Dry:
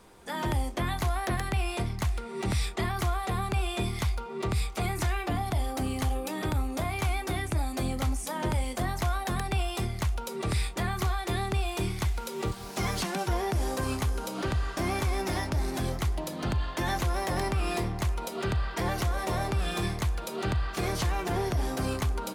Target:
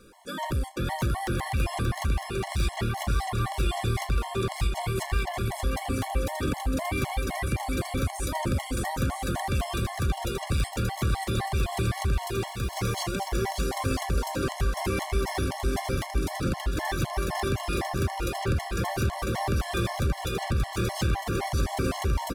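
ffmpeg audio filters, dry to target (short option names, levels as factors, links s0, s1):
-filter_complex "[0:a]volume=20,asoftclip=hard,volume=0.0501,asplit=2[s0][s1];[s1]aecho=0:1:580|957|1202|1361|1465:0.631|0.398|0.251|0.158|0.1[s2];[s0][s2]amix=inputs=2:normalize=0,afftfilt=real='re*gt(sin(2*PI*3.9*pts/sr)*(1-2*mod(floor(b*sr/1024/560),2)),0)':imag='im*gt(sin(2*PI*3.9*pts/sr)*(1-2*mod(floor(b*sr/1024/560),2)),0)':win_size=1024:overlap=0.75,volume=1.5"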